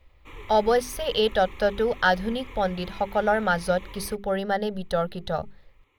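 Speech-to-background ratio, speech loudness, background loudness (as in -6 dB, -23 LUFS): 19.0 dB, -25.5 LUFS, -44.5 LUFS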